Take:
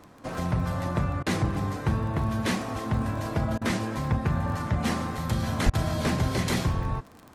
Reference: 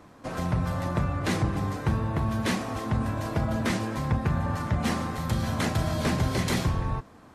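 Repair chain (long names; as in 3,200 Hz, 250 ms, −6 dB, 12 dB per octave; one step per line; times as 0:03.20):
click removal
0:05.65–0:05.77: high-pass filter 140 Hz 24 dB per octave
repair the gap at 0:01.23/0:03.58/0:05.70, 33 ms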